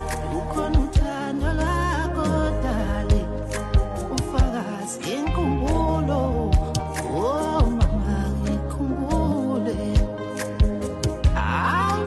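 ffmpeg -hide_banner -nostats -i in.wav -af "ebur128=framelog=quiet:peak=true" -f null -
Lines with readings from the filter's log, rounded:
Integrated loudness:
  I:         -23.8 LUFS
  Threshold: -33.8 LUFS
Loudness range:
  LRA:         1.5 LU
  Threshold: -43.9 LUFS
  LRA low:   -24.6 LUFS
  LRA high:  -23.1 LUFS
True peak:
  Peak:       -8.0 dBFS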